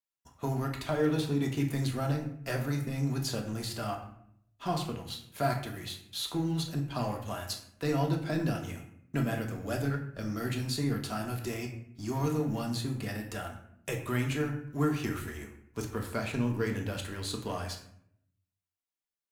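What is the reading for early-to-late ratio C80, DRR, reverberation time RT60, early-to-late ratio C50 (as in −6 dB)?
10.5 dB, 1.5 dB, 0.70 s, 7.5 dB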